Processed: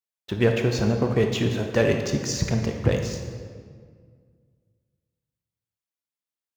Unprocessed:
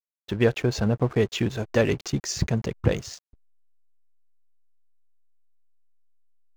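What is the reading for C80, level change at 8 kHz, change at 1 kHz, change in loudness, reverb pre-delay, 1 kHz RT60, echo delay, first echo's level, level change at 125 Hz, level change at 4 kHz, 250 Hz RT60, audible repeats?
6.5 dB, +1.5 dB, +1.5 dB, +1.5 dB, 18 ms, 1.8 s, none, none, +1.5 dB, +1.5 dB, 2.3 s, none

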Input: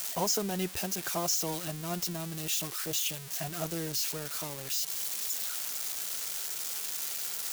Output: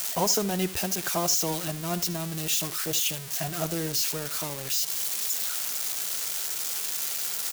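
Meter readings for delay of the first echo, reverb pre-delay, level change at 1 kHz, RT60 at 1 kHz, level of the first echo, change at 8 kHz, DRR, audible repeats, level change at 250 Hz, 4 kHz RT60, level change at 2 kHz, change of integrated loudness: 75 ms, none, +5.0 dB, none, -17.0 dB, +5.0 dB, none, 1, +5.0 dB, none, +5.0 dB, +5.0 dB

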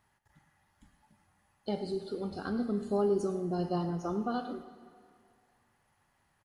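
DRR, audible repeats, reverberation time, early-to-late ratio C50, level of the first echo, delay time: 9.0 dB, 1, 2.2 s, 10.0 dB, -14.5 dB, 0.106 s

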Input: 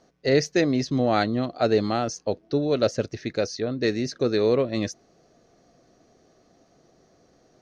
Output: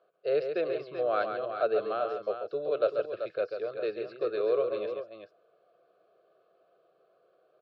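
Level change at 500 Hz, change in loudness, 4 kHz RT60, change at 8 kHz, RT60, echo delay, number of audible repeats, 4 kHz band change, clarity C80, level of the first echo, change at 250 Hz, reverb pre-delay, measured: -4.5 dB, -6.5 dB, none, n/a, none, 0.138 s, 2, -16.0 dB, none, -7.0 dB, -18.5 dB, none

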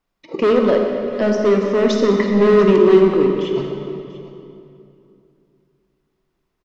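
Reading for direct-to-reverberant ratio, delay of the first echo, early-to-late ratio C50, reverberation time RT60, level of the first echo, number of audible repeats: 2.0 dB, 0.69 s, 2.5 dB, 2.8 s, -17.5 dB, 1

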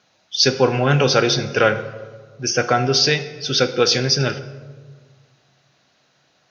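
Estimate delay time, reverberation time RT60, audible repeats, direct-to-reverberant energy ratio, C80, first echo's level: none, 1.5 s, none, 10.0 dB, 14.0 dB, none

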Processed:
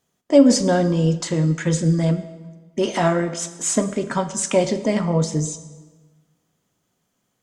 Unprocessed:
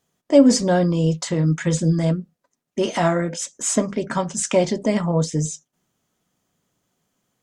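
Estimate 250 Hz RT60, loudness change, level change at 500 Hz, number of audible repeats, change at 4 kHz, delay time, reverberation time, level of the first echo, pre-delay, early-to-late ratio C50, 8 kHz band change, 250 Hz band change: 1.4 s, +0.5 dB, +0.5 dB, none, +0.5 dB, none, 1.3 s, none, 16 ms, 12.5 dB, +0.5 dB, +0.5 dB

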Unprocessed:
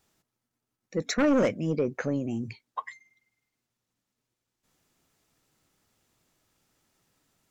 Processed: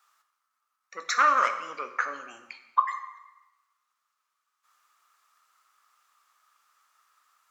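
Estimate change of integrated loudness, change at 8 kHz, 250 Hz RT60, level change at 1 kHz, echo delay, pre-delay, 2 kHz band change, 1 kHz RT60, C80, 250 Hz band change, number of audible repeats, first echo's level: +1.5 dB, n/a, 1.0 s, +13.5 dB, none, 6 ms, +7.5 dB, 1.1 s, 12.0 dB, -24.0 dB, none, none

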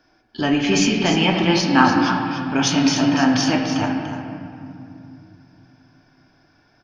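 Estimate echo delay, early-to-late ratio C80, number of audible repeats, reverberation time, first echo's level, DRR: 0.292 s, 3.0 dB, 1, 2.6 s, -8.5 dB, 0.5 dB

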